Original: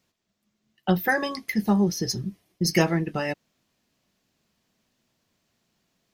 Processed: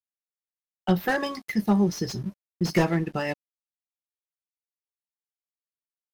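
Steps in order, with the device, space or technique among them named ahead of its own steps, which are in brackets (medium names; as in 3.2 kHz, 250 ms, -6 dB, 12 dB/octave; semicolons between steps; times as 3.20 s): early transistor amplifier (crossover distortion -49 dBFS; slew-rate limiter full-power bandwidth 110 Hz)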